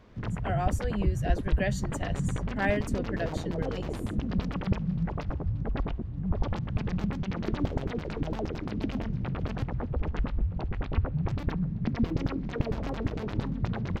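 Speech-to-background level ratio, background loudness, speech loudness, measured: −3.0 dB, −32.0 LKFS, −35.0 LKFS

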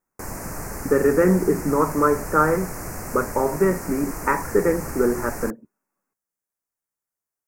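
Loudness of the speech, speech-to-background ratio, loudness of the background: −22.0 LKFS, 11.0 dB, −33.0 LKFS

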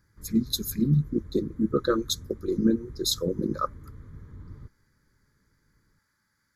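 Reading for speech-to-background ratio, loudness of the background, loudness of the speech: 18.5 dB, −46.0 LKFS, −27.5 LKFS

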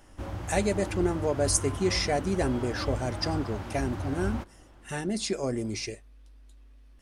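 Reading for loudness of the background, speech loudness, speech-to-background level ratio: −35.5 LKFS, −30.0 LKFS, 5.5 dB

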